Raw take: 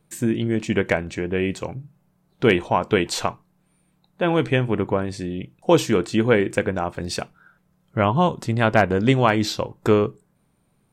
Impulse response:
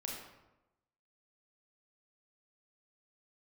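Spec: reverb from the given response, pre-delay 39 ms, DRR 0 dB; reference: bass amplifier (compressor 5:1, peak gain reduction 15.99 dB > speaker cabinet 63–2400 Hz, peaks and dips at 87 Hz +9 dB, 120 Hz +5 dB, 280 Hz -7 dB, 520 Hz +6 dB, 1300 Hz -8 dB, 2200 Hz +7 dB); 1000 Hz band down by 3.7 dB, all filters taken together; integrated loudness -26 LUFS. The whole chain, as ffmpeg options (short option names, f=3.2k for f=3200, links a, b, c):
-filter_complex "[0:a]equalizer=f=1k:t=o:g=-4,asplit=2[a][b];[1:a]atrim=start_sample=2205,adelay=39[c];[b][c]afir=irnorm=-1:irlink=0,volume=0dB[d];[a][d]amix=inputs=2:normalize=0,acompressor=threshold=-28dB:ratio=5,highpass=f=63:w=0.5412,highpass=f=63:w=1.3066,equalizer=f=87:t=q:w=4:g=9,equalizer=f=120:t=q:w=4:g=5,equalizer=f=280:t=q:w=4:g=-7,equalizer=f=520:t=q:w=4:g=6,equalizer=f=1.3k:t=q:w=4:g=-8,equalizer=f=2.2k:t=q:w=4:g=7,lowpass=f=2.4k:w=0.5412,lowpass=f=2.4k:w=1.3066,volume=4dB"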